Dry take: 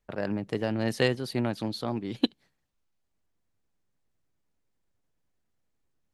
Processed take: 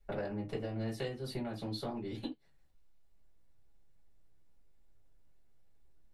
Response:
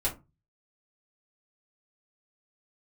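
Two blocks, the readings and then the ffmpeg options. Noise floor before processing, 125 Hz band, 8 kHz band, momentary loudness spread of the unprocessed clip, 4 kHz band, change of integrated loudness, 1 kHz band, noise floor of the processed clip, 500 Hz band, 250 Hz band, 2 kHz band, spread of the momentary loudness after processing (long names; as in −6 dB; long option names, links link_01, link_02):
−77 dBFS, −7.5 dB, −10.0 dB, 6 LU, −11.5 dB, −10.0 dB, −8.5 dB, −63 dBFS, −9.0 dB, −10.0 dB, −13.5 dB, 5 LU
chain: -filter_complex "[0:a]acompressor=threshold=-38dB:ratio=16[link_01];[1:a]atrim=start_sample=2205,afade=type=out:start_time=0.14:duration=0.01,atrim=end_sample=6615[link_02];[link_01][link_02]afir=irnorm=-1:irlink=0,volume=-3.5dB"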